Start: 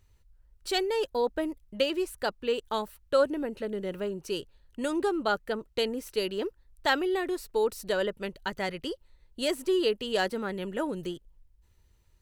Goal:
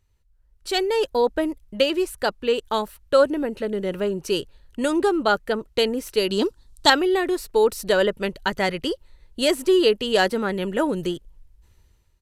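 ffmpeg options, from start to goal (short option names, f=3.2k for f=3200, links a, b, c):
-filter_complex "[0:a]aresample=32000,aresample=44100,dynaudnorm=f=280:g=5:m=14dB,asettb=1/sr,asplit=3[a][b][c];[a]atrim=end=6.304[d];[b]atrim=start=6.3:end=6.9,asetpts=PTS-STARTPTS,afade=t=in:d=0.004:c=qsin,afade=t=out:st=0.596:d=0.004:c=qsin,equalizer=f=125:t=o:w=1:g=3,equalizer=f=250:t=o:w=1:g=8,equalizer=f=500:t=o:w=1:g=-4,equalizer=f=1k:t=o:w=1:g=5,equalizer=f=2k:t=o:w=1:g=-7,equalizer=f=4k:t=o:w=1:g=9,equalizer=f=8k:t=o:w=1:g=9[e];[c]atrim=start=6.896[f];[d][e]acrossfade=d=0.004:c1=hsin:c2=qsin[g];[g][f]acrossfade=d=0.004:c1=qsin:c2=hsin,volume=-4dB"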